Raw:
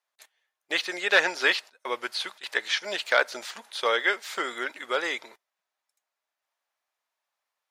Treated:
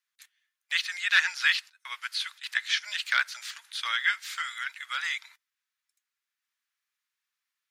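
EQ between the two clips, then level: high-pass 1.4 kHz 24 dB/octave; 0.0 dB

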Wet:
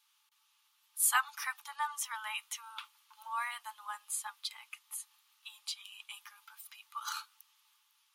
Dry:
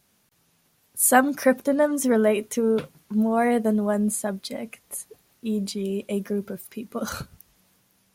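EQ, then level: rippled Chebyshev high-pass 840 Hz, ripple 9 dB; 0.0 dB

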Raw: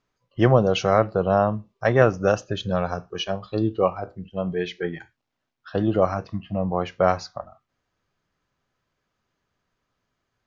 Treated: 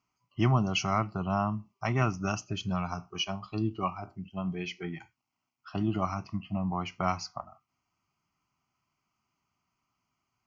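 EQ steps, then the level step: high-pass 150 Hz 6 dB/octave; dynamic bell 690 Hz, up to -6 dB, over -29 dBFS, Q 0.73; static phaser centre 2.5 kHz, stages 8; 0.0 dB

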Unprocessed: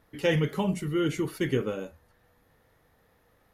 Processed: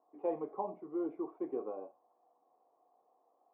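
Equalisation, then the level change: cascade formant filter a; ladder high-pass 280 Hz, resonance 50%; tilt shelf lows +6.5 dB; +13.0 dB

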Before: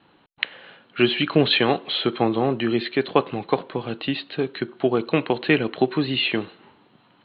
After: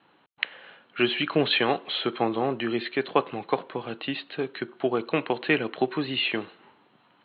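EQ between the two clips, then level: high-pass 89 Hz; distance through air 190 m; bass shelf 420 Hz -8.5 dB; 0.0 dB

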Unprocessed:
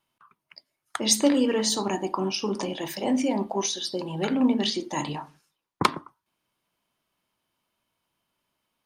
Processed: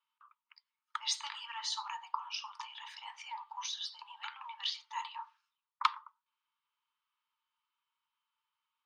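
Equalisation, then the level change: dynamic bell 5.8 kHz, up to +5 dB, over -38 dBFS, Q 0.92; rippled Chebyshev high-pass 870 Hz, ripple 6 dB; tape spacing loss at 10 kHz 25 dB; 0.0 dB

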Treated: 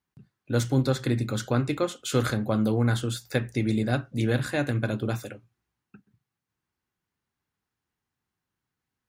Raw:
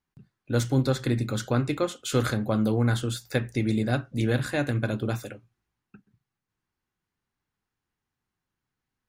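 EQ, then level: high-pass 48 Hz; 0.0 dB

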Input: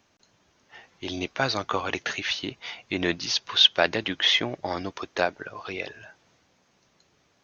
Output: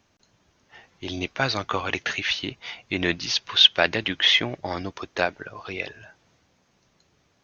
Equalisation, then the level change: dynamic bell 2.4 kHz, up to +5 dB, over -37 dBFS, Q 0.88; bass shelf 150 Hz +7.5 dB; -1.0 dB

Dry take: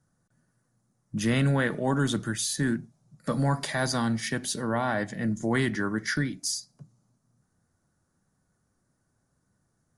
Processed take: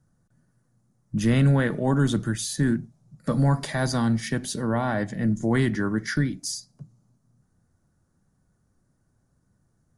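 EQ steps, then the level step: tilt EQ -2 dB/octave; treble shelf 4.3 kHz +6 dB; 0.0 dB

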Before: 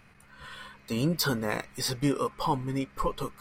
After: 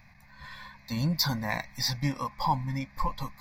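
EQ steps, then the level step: peaking EQ 430 Hz -8 dB 0.71 oct; static phaser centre 2 kHz, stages 8; +3.5 dB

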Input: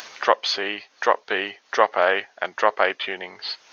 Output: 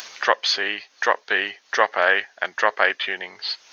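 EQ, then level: treble shelf 2.5 kHz +8 dB; dynamic bell 1.7 kHz, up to +7 dB, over -37 dBFS, Q 3.5; -3.0 dB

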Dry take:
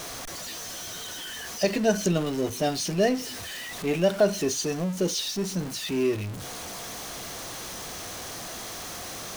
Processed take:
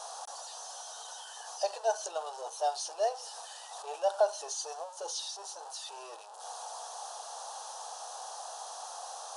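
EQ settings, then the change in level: brick-wall FIR band-pass 340–11000 Hz; peaking EQ 830 Hz +12.5 dB 0.39 oct; static phaser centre 890 Hz, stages 4; -5.5 dB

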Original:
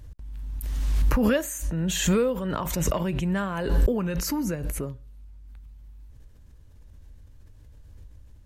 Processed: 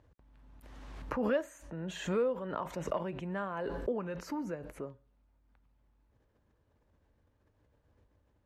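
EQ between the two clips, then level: band-pass filter 730 Hz, Q 0.67; -5.0 dB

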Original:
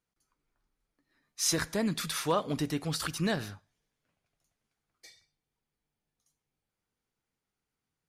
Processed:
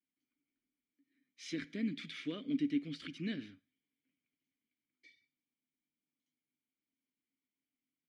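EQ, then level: vowel filter i; distance through air 60 m; +5.0 dB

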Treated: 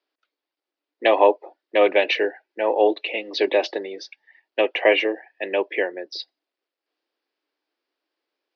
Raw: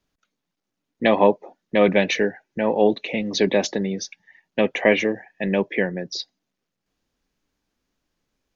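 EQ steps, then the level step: Chebyshev band-pass 320–4900 Hz, order 4; dynamic bell 2.8 kHz, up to +8 dB, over -46 dBFS, Q 5.2; dynamic bell 780 Hz, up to +4 dB, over -29 dBFS, Q 0.8; -1.5 dB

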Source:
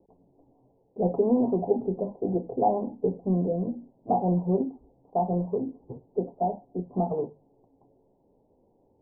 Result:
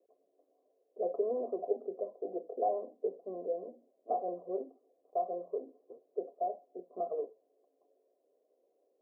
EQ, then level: high-pass 440 Hz 24 dB/octave; Butterworth band-stop 880 Hz, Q 2.4; -4.0 dB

